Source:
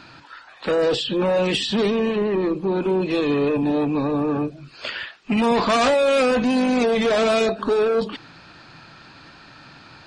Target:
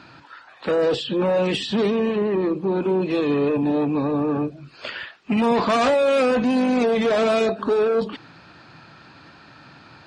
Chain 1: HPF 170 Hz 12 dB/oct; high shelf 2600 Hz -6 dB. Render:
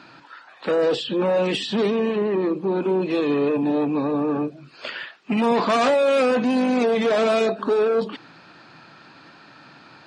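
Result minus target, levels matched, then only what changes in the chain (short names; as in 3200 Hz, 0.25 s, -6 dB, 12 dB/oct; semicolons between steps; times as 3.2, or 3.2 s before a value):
125 Hz band -2.5 dB
change: HPF 62 Hz 12 dB/oct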